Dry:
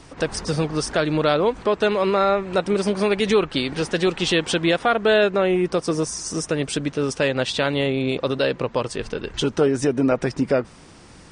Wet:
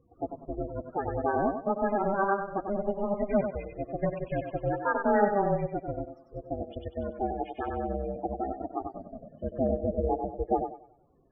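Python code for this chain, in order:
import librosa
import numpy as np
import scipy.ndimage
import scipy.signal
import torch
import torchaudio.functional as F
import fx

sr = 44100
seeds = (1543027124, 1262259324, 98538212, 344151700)

y = x * np.sin(2.0 * np.pi * 200.0 * np.arange(len(x)) / sr)
y = fx.filter_lfo_lowpass(y, sr, shape='sine', hz=7.0, low_hz=860.0, high_hz=2300.0, q=1.4)
y = fx.spec_topn(y, sr, count=16)
y = fx.echo_thinned(y, sr, ms=95, feedback_pct=45, hz=240.0, wet_db=-4)
y = fx.upward_expand(y, sr, threshold_db=-36.0, expansion=1.5)
y = y * 10.0 ** (-4.5 / 20.0)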